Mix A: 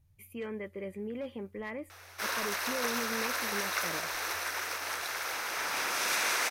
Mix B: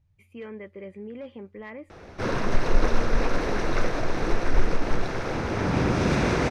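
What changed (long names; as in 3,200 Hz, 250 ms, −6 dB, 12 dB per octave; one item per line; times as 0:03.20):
background: remove high-pass filter 1,200 Hz 12 dB per octave
master: add high-frequency loss of the air 110 metres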